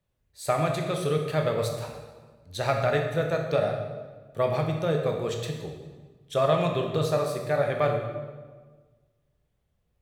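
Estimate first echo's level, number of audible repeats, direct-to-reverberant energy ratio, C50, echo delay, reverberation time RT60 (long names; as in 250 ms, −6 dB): no echo audible, no echo audible, 2.0 dB, 4.5 dB, no echo audible, 1.4 s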